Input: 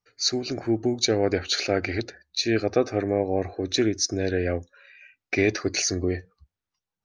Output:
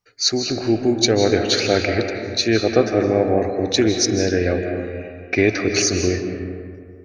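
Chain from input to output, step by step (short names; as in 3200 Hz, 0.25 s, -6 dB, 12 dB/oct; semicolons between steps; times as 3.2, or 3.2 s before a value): 4.59–5.76 air absorption 83 m; digital reverb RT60 2.2 s, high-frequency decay 0.45×, pre-delay 0.12 s, DRR 4.5 dB; gain +5.5 dB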